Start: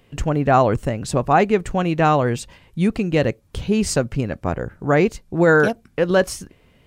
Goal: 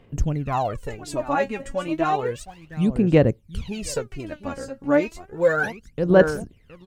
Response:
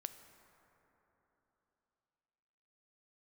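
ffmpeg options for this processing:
-filter_complex "[0:a]aecho=1:1:717:0.211,aphaser=in_gain=1:out_gain=1:delay=3.7:decay=0.8:speed=0.32:type=sinusoidal,asettb=1/sr,asplit=3[s0][s1][s2];[s0]atrim=end=2.364[s3];[s1]atrim=start=2.36:end=2.8,asetpts=PTS-STARTPTS,afade=t=in:d=0.004:c=qsin,afade=t=out:st=0.436:d=0.004:c=qsin,aeval=exprs='sgn(val(0))*max(abs(val(0))-0.00562,0)':c=same[s4];[s2]atrim=start=2.796[s5];[s3][s4]acrossfade=d=0.004:c1=hsin:c2=qsin[s6];[s6][s5]acrossfade=d=0.004:c1=qsin:c2=hsin,volume=0.299"

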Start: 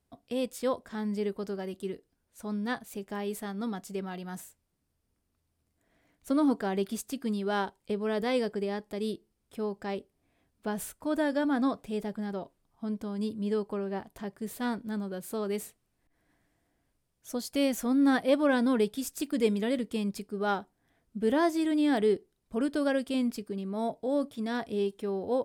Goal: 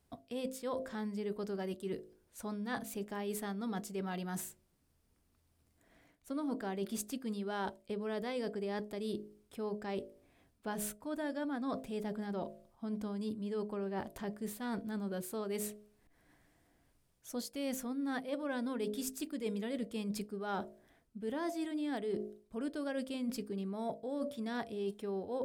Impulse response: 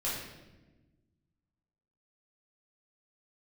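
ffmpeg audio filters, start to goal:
-af "bandreject=f=52.34:t=h:w=4,bandreject=f=104.68:t=h:w=4,bandreject=f=157.02:t=h:w=4,bandreject=f=209.36:t=h:w=4,bandreject=f=261.7:t=h:w=4,bandreject=f=314.04:t=h:w=4,bandreject=f=366.38:t=h:w=4,bandreject=f=418.72:t=h:w=4,bandreject=f=471.06:t=h:w=4,bandreject=f=523.4:t=h:w=4,bandreject=f=575.74:t=h:w=4,bandreject=f=628.08:t=h:w=4,bandreject=f=680.42:t=h:w=4,areverse,acompressor=threshold=0.01:ratio=6,areverse,volume=1.58"

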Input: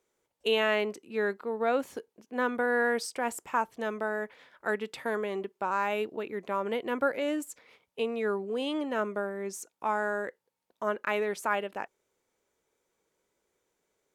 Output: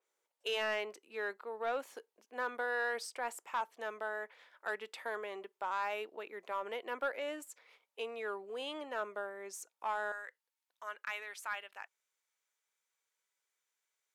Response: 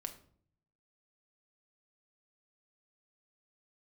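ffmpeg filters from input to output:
-af "asetnsamples=n=441:p=0,asendcmd='10.12 highpass f 1400',highpass=570,asoftclip=type=tanh:threshold=0.0841,adynamicequalizer=threshold=0.00355:dfrequency=4200:dqfactor=0.7:tfrequency=4200:tqfactor=0.7:attack=5:release=100:ratio=0.375:range=2:mode=cutabove:tftype=highshelf,volume=0.596"

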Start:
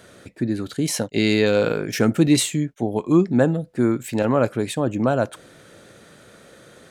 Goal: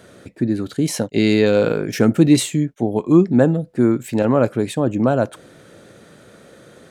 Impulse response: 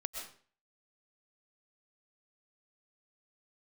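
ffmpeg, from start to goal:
-af "equalizer=f=240:w=0.3:g=5,volume=0.891"

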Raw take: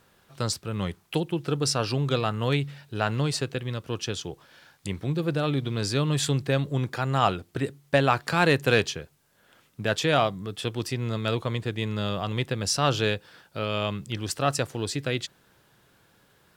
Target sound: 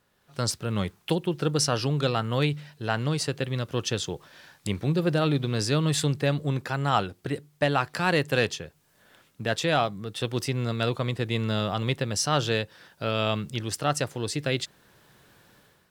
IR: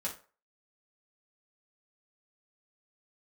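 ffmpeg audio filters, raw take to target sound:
-af "asetrate=45938,aresample=44100,dynaudnorm=f=100:g=7:m=4.22,volume=0.376"

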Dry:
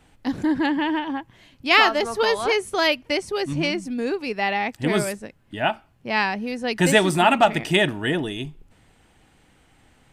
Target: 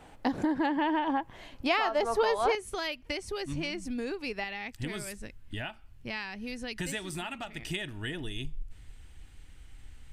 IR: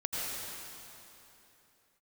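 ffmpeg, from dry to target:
-af "asubboost=boost=8:cutoff=59,acompressor=threshold=0.0316:ratio=6,asetnsamples=n=441:p=0,asendcmd='2.55 equalizer g -3.5;4.44 equalizer g -10',equalizer=f=700:t=o:w=2:g=9"

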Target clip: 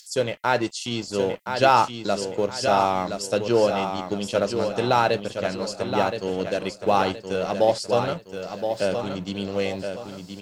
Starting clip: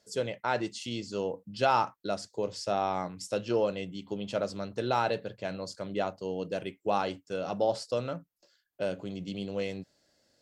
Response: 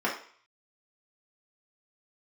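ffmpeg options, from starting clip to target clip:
-filter_complex "[0:a]highshelf=f=9500:g=3.5,acrossover=split=2400[s0][s1];[s0]aeval=exprs='sgn(val(0))*max(abs(val(0))-0.00376,0)':c=same[s2];[s1]acompressor=mode=upward:threshold=0.00355:ratio=2.5[s3];[s2][s3]amix=inputs=2:normalize=0,aecho=1:1:1021|2042|3063|4084:0.447|0.165|0.0612|0.0226,volume=2.66"

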